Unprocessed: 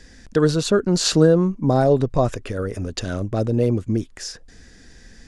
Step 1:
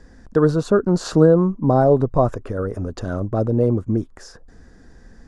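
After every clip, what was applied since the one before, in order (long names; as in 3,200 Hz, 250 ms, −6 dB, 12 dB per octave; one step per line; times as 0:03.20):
high shelf with overshoot 1,700 Hz −11.5 dB, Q 1.5
level +1 dB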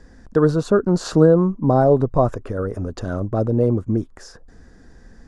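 no processing that can be heard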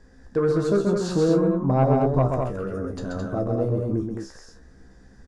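tuned comb filter 66 Hz, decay 0.2 s, harmonics all, mix 90%
soft clipping −11.5 dBFS, distortion −18 dB
loudspeakers that aren't time-aligned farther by 45 metres −4 dB, 74 metres −5 dB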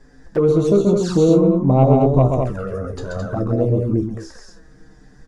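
flanger swept by the level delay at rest 7.7 ms, full sweep at −19 dBFS
level +7 dB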